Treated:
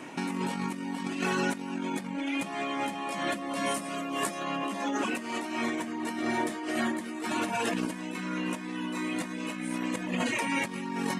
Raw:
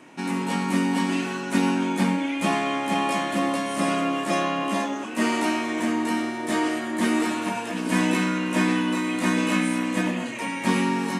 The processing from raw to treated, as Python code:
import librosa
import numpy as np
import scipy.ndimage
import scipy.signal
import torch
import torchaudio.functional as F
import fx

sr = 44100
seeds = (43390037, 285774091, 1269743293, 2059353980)

y = fx.dereverb_blind(x, sr, rt60_s=0.57)
y = fx.high_shelf(y, sr, hz=8300.0, db=11.5, at=(3.74, 4.56))
y = fx.over_compress(y, sr, threshold_db=-33.0, ratio=-1.0)